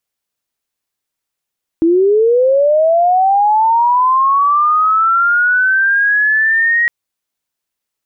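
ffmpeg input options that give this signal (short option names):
-f lavfi -i "aevalsrc='pow(10,(-7.5-2*t/5.06)/20)*sin(2*PI*(320*t+1580*t*t/(2*5.06)))':d=5.06:s=44100"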